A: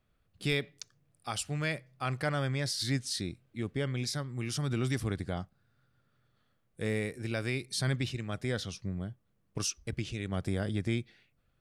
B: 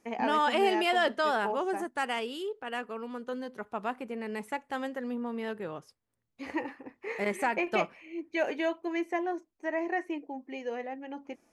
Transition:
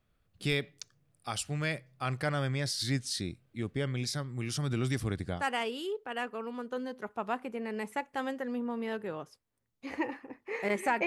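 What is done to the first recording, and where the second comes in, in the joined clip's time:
A
5.39 s: go over to B from 1.95 s, crossfade 0.12 s

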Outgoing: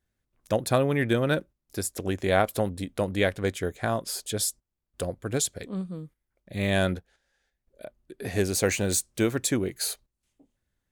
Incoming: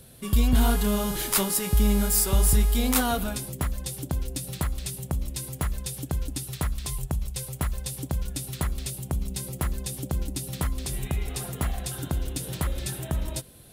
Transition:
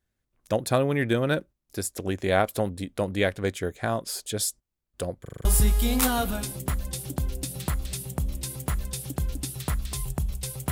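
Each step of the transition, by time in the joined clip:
outgoing
5.21 s: stutter in place 0.04 s, 6 plays
5.45 s: go over to incoming from 2.38 s

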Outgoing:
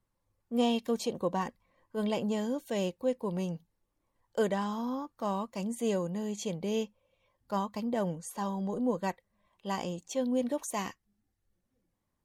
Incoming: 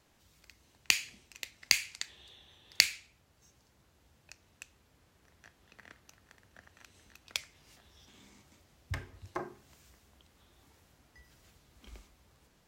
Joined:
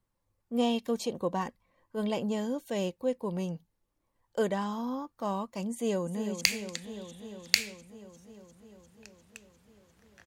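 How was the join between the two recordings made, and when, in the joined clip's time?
outgoing
5.71–6.41 s: echo throw 350 ms, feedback 75%, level -9 dB
6.41 s: go over to incoming from 1.67 s

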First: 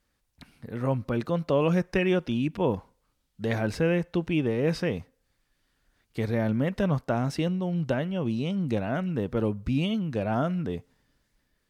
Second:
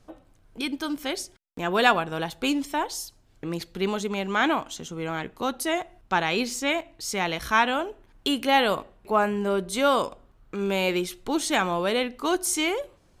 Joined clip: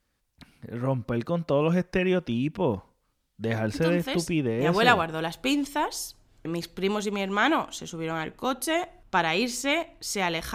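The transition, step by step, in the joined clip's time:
first
4.71 s: go over to second from 1.69 s, crossfade 1.94 s logarithmic

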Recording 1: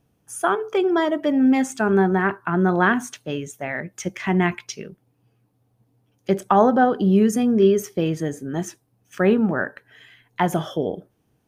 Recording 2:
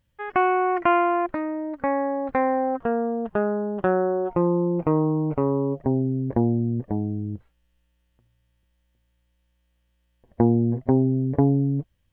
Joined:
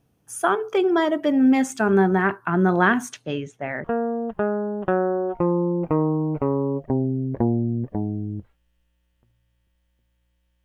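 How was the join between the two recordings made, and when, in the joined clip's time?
recording 1
3.08–3.84 s: low-pass 11 kHz -> 1.5 kHz
3.84 s: go over to recording 2 from 2.80 s

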